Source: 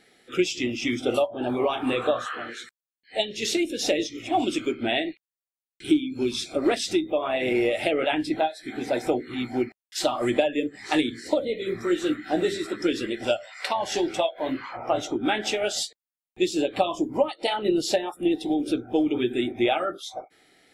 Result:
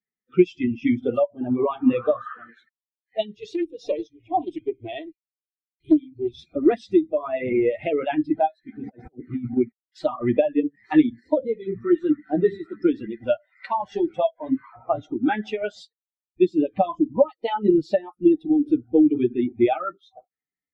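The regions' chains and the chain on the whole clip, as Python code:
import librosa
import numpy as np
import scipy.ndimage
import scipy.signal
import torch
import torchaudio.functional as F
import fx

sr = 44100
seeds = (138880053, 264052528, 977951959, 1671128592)

y = fx.chain(x, sr, fx.fixed_phaser(hz=540.0, stages=4),
    fx.small_body(hz=(210.0, 1100.0), ring_ms=30, db=8),
    fx.doppler_dist(depth_ms=0.35), at=(3.34, 6.39))
y = fx.chain(y, sr, fx.high_shelf(hz=3700.0, db=-8.5),
    fx.over_compress(threshold_db=-31.0, ratio=-0.5), at=(8.78, 9.57))
y = fx.bin_expand(y, sr, power=2.0)
y = scipy.signal.sosfilt(scipy.signal.butter(2, 1700.0, 'lowpass', fs=sr, output='sos'), y)
y = fx.peak_eq(y, sr, hz=210.0, db=7.5, octaves=1.5)
y = y * librosa.db_to_amplitude(5.5)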